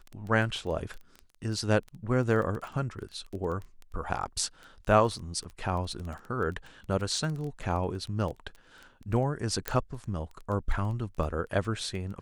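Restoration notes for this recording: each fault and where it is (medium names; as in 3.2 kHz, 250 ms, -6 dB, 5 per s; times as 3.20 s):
crackle 12 per s -34 dBFS
9.68 s: pop -12 dBFS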